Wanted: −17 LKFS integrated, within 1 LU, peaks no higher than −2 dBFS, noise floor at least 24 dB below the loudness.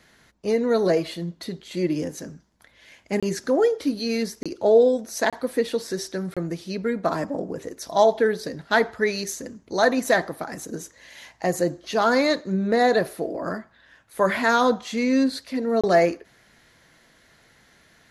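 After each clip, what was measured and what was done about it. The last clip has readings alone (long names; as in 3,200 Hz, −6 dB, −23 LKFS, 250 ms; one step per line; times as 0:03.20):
number of dropouts 5; longest dropout 26 ms; integrated loudness −23.5 LKFS; sample peak −5.5 dBFS; target loudness −17.0 LKFS
→ repair the gap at 0:03.20/0:04.43/0:05.30/0:06.34/0:15.81, 26 ms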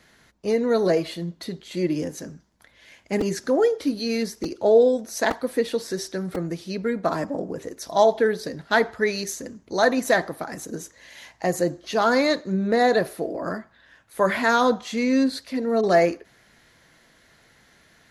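number of dropouts 0; integrated loudness −23.5 LKFS; sample peak −5.5 dBFS; target loudness −17.0 LKFS
→ level +6.5 dB
brickwall limiter −2 dBFS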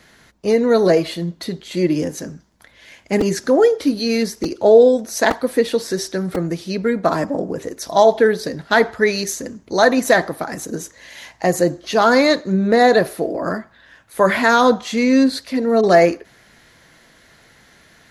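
integrated loudness −17.0 LKFS; sample peak −2.0 dBFS; background noise floor −51 dBFS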